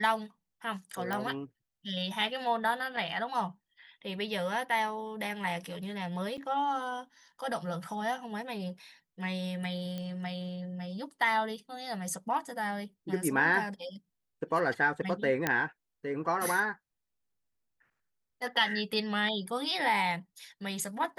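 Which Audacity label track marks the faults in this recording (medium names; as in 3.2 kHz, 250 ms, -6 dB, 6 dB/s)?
1.130000	1.130000	pop -19 dBFS
6.370000	6.380000	dropout 8.1 ms
9.980000	9.980000	pop -25 dBFS
15.470000	15.470000	pop -12 dBFS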